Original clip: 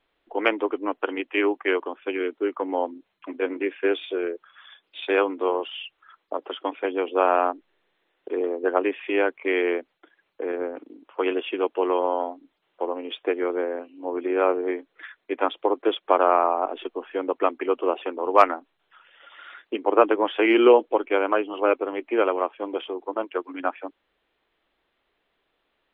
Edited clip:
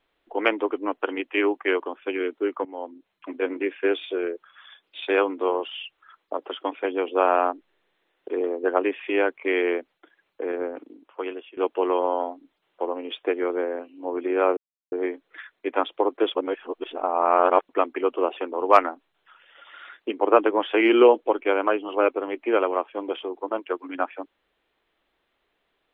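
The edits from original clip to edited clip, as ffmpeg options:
-filter_complex "[0:a]asplit=6[s0][s1][s2][s3][s4][s5];[s0]atrim=end=2.65,asetpts=PTS-STARTPTS,afade=t=out:st=2.646:d=0.004:c=hsin:silence=0.158489[s6];[s1]atrim=start=2.65:end=11.57,asetpts=PTS-STARTPTS,afade=t=in:d=0.64:silence=0.158489,afade=t=out:st=8.16:d=0.76:silence=0.0668344[s7];[s2]atrim=start=11.57:end=14.57,asetpts=PTS-STARTPTS,afade=t=in:d=0.004:c=hsin:silence=0.0668344,afade=t=out:st=2.996:d=0.004:c=hsin,apad=pad_dur=0.35[s8];[s3]atrim=start=14.57:end=16.002,asetpts=PTS-STARTPTS,afade=t=in:d=0.004:c=hsin[s9];[s4]atrim=start=15.998:end=17.342,asetpts=PTS-STARTPTS,areverse[s10];[s5]atrim=start=17.338[s11];[s6][s7][s8][s9]concat=n=4:v=0:a=1[s12];[s12][s10]acrossfade=d=0.004:c1=hsin:c2=hsin[s13];[s13][s11]acrossfade=d=0.004:c1=hsin:c2=hsin"

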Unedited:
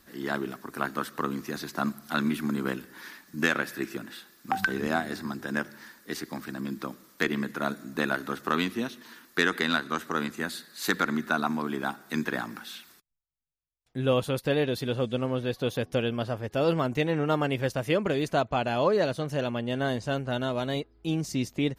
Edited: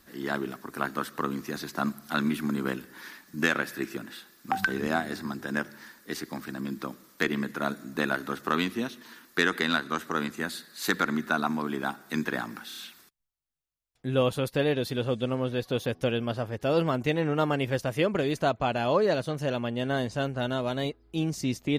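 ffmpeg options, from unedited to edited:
-filter_complex "[0:a]asplit=4[s0][s1][s2][s3];[s0]atrim=end=12.712[s4];[s1]atrim=start=12.678:end=12.712[s5];[s2]atrim=start=12.678:end=12.712[s6];[s3]atrim=start=12.678[s7];[s4][s5]acrossfade=d=0.004:c1=hsin:c2=hsin[s8];[s8][s6]acrossfade=d=0.004:c1=hsin:c2=hsin[s9];[s9][s7]acrossfade=d=0.004:c1=hsin:c2=hsin"

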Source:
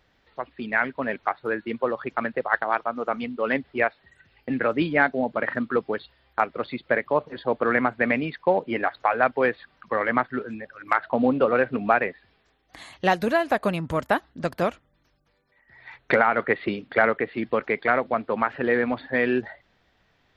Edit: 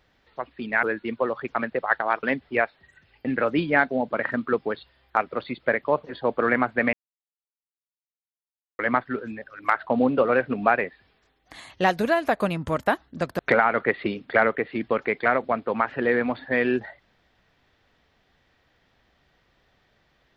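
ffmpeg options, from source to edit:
-filter_complex "[0:a]asplit=6[s0][s1][s2][s3][s4][s5];[s0]atrim=end=0.832[s6];[s1]atrim=start=1.448:end=2.852[s7];[s2]atrim=start=3.458:end=8.16,asetpts=PTS-STARTPTS,afade=t=out:st=4.698:d=0.004:c=hsin[s8];[s3]atrim=start=8.16:end=10.02,asetpts=PTS-STARTPTS,volume=0[s9];[s4]atrim=start=10.02:end=14.622,asetpts=PTS-STARTPTS,afade=t=in:d=0.004:c=hsin[s10];[s5]atrim=start=16.008[s11];[s6][s7]acrossfade=d=0.004:c1=hsin:c2=hsin[s12];[s8][s9][s10]concat=n=3:v=0:a=1[s13];[s12][s13]acrossfade=d=0.004:c1=hsin:c2=hsin[s14];[s14][s11]acrossfade=d=0.004:c1=hsin:c2=hsin"

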